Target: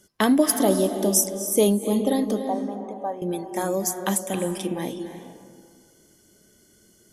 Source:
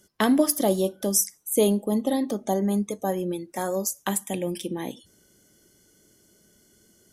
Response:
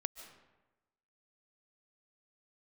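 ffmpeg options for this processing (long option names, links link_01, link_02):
-filter_complex "[0:a]asettb=1/sr,asplit=3[link_01][link_02][link_03];[link_01]atrim=end=2.394[link_04];[link_02]atrim=start=2.39:end=3.22,asetpts=PTS-STARTPTS,afade=type=in:duration=0.004:curve=qsin,afade=type=out:start_time=0.826:duration=0.004:curve=qsin,bandpass=frequency=840:width_type=q:width=1.9:csg=0[link_05];[link_03]atrim=start=3.216[link_06];[link_04][link_05]acrossfade=duration=0.004:curve1=hsin:curve2=qsin[link_07];[link_07][link_06]acrossfade=duration=0.004:curve1=qsin:curve2=hsin[link_08];[1:a]atrim=start_sample=2205,asetrate=24255,aresample=44100[link_09];[link_08][link_09]afir=irnorm=-1:irlink=0"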